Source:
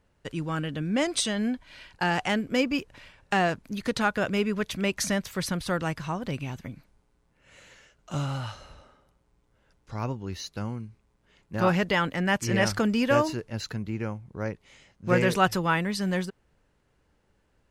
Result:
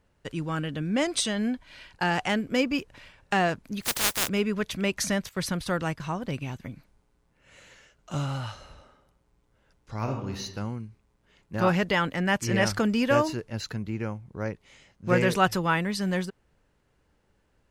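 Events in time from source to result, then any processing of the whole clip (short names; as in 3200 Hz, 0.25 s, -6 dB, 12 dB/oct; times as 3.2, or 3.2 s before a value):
3.81–4.27 spectral contrast lowered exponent 0.12
5.29–6.6 gate -40 dBFS, range -12 dB
9.96–10.42 reverb throw, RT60 0.8 s, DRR 2 dB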